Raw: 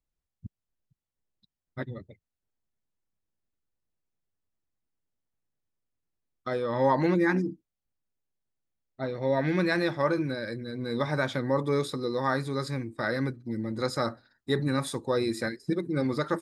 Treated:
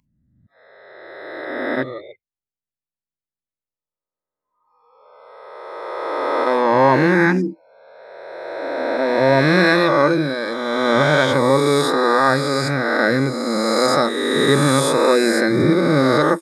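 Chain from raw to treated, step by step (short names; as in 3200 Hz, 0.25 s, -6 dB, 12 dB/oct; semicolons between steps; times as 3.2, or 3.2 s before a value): spectral swells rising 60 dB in 2.47 s; spectral noise reduction 25 dB; AGC gain up to 11 dB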